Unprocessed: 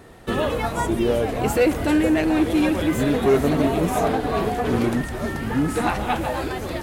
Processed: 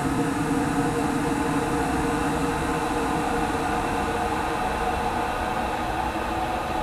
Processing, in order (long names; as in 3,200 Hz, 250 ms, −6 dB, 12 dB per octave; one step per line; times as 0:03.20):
variable-slope delta modulation 64 kbit/s
reverb reduction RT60 1.7 s
extreme stretch with random phases 14×, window 1.00 s, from 0:05.66